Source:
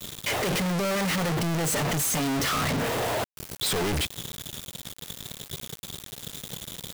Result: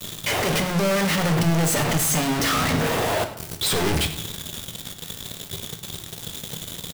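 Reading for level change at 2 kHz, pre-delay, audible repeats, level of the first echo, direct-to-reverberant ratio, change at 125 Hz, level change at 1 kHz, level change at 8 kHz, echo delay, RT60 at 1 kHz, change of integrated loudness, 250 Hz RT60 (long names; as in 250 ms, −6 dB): +4.5 dB, 8 ms, 1, −16.5 dB, 5.5 dB, +5.5 dB, +4.5 dB, +4.0 dB, 101 ms, 0.65 s, +4.5 dB, 0.85 s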